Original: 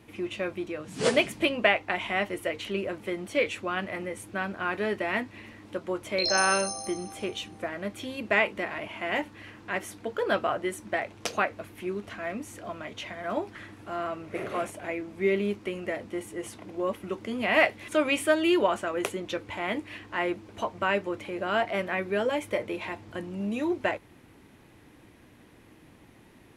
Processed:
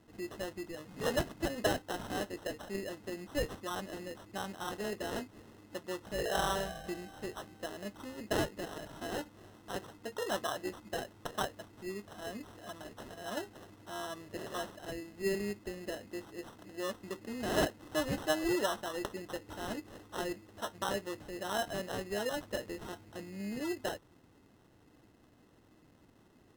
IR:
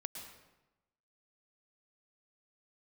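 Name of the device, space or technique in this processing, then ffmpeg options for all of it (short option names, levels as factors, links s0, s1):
crushed at another speed: -af "asetrate=22050,aresample=44100,acrusher=samples=38:mix=1:aa=0.000001,asetrate=88200,aresample=44100,volume=0.376"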